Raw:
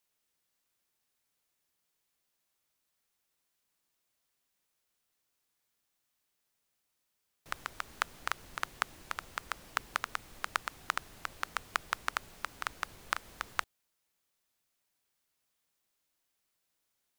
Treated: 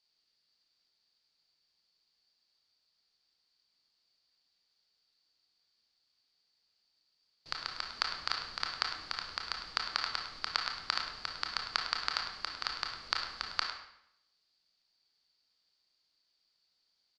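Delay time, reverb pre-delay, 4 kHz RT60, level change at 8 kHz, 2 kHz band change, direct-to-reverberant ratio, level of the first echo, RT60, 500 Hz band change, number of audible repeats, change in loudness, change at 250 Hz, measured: 104 ms, 25 ms, 0.65 s, −4.5 dB, −1.0 dB, 1.5 dB, −11.5 dB, 0.75 s, −2.0 dB, 1, +3.0 dB, −2.0 dB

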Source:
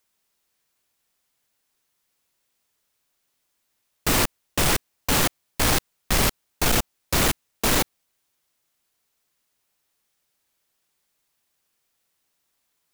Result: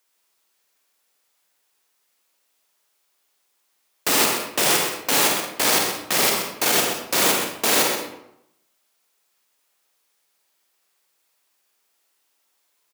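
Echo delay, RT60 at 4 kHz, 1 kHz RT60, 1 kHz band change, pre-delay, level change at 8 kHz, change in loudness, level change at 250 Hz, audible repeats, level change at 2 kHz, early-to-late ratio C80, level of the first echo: 128 ms, 0.55 s, 0.80 s, +3.5 dB, 38 ms, +4.5 dB, +4.0 dB, −1.0 dB, 1, +3.5 dB, 4.0 dB, −8.0 dB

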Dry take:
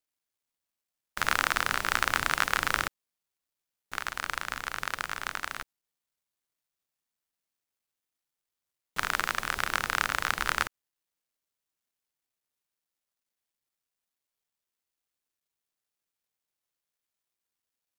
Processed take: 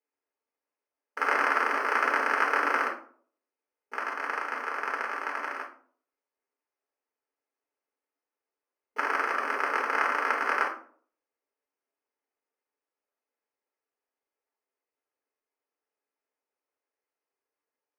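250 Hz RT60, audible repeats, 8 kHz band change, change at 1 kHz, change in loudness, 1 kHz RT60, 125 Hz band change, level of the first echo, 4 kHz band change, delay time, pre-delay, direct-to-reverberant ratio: 0.60 s, no echo audible, −13.0 dB, +4.0 dB, +2.0 dB, 0.45 s, below −30 dB, no echo audible, −10.0 dB, no echo audible, 4 ms, −3.0 dB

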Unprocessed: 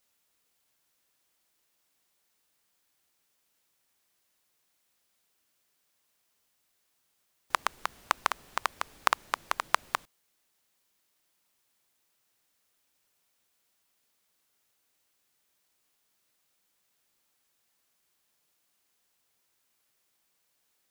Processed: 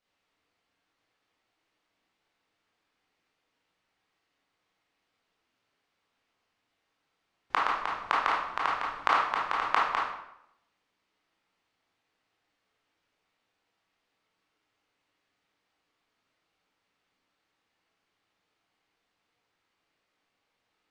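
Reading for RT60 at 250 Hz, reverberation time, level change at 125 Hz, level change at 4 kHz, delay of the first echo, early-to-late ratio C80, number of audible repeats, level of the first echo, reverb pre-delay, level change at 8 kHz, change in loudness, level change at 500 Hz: 0.75 s, 0.75 s, can't be measured, −1.0 dB, no echo audible, 6.0 dB, no echo audible, no echo audible, 18 ms, below −10 dB, +3.5 dB, +3.5 dB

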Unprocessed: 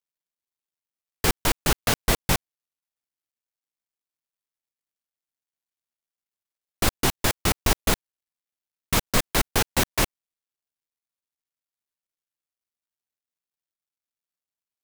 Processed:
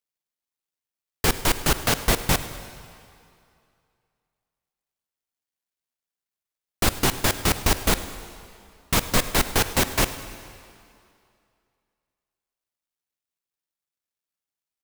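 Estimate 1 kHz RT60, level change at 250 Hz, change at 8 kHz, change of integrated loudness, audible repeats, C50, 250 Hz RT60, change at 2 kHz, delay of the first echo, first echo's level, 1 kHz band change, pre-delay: 2.5 s, +1.5 dB, +1.5 dB, +1.5 dB, 2, 11.5 dB, 2.3 s, +1.5 dB, 102 ms, −20.0 dB, +1.5 dB, 25 ms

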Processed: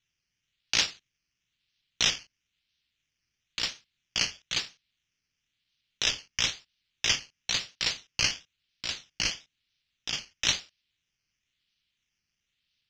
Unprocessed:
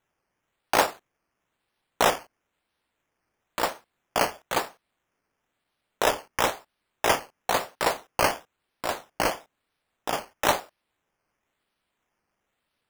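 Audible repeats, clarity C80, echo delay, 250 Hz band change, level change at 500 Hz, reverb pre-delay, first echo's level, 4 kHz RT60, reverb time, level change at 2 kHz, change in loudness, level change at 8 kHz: no echo audible, no reverb audible, no echo audible, −11.0 dB, −20.0 dB, no reverb audible, no echo audible, no reverb audible, no reverb audible, −3.0 dB, −2.0 dB, +2.0 dB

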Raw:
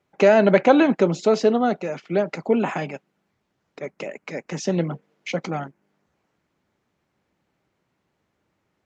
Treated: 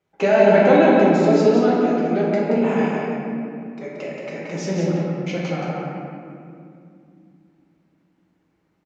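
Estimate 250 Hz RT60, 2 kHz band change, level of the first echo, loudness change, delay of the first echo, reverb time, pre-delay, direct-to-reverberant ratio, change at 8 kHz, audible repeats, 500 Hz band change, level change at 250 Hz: 4.1 s, +2.0 dB, −4.5 dB, +2.5 dB, 177 ms, 2.5 s, 6 ms, −6.5 dB, can't be measured, 1, +3.0 dB, +4.0 dB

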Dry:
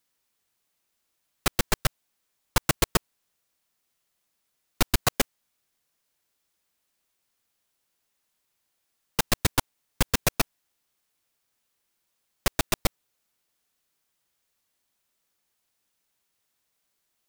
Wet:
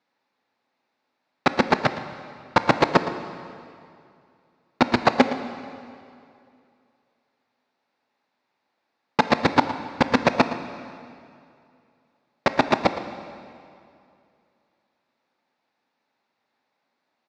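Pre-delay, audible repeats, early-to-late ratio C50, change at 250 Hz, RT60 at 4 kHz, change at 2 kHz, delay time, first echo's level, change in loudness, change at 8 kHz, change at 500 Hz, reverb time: 13 ms, 1, 9.5 dB, +10.5 dB, 2.1 s, +6.0 dB, 115 ms, −14.5 dB, +4.5 dB, −14.5 dB, +10.0 dB, 2.5 s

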